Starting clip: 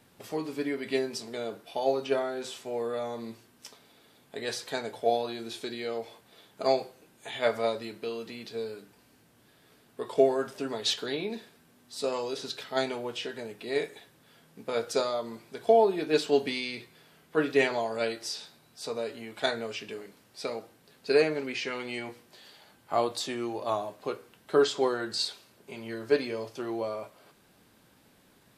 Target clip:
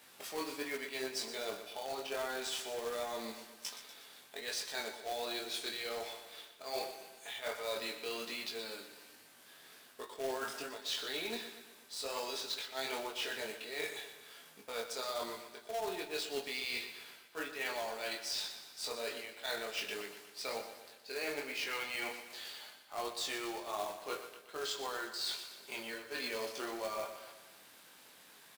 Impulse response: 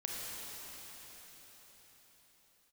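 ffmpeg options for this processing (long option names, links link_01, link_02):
-af "highpass=frequency=1400:poles=1,areverse,acompressor=threshold=-43dB:ratio=12,areverse,flanger=delay=19.5:depth=3.8:speed=1.3,acrusher=bits=2:mode=log:mix=0:aa=0.000001,aecho=1:1:121|242|363|484|605|726:0.282|0.147|0.0762|0.0396|0.0206|0.0107,volume=9.5dB"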